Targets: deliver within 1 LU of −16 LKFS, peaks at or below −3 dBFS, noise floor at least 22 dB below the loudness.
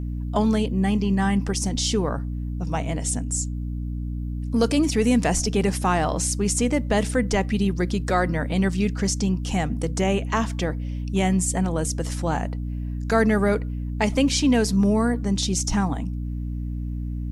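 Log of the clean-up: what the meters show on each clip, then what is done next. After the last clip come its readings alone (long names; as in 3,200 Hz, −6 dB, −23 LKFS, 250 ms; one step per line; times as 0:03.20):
mains hum 60 Hz; hum harmonics up to 300 Hz; level of the hum −26 dBFS; integrated loudness −23.5 LKFS; sample peak −8.0 dBFS; target loudness −16.0 LKFS
→ mains-hum notches 60/120/180/240/300 Hz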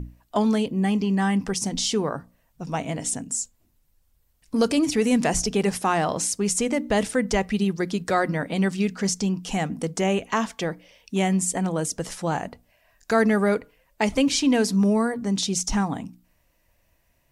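mains hum none found; integrated loudness −24.0 LKFS; sample peak −8.5 dBFS; target loudness −16.0 LKFS
→ level +8 dB
brickwall limiter −3 dBFS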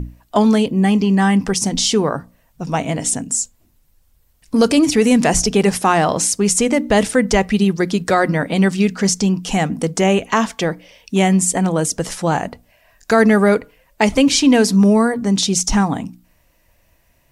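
integrated loudness −16.0 LKFS; sample peak −3.0 dBFS; background noise floor −58 dBFS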